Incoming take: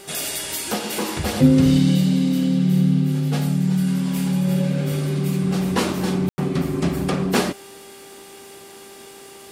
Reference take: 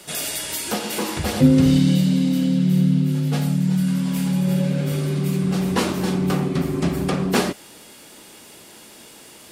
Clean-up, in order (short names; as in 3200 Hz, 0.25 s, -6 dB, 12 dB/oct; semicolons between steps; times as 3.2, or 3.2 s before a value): de-hum 394.5 Hz, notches 7; room tone fill 6.29–6.38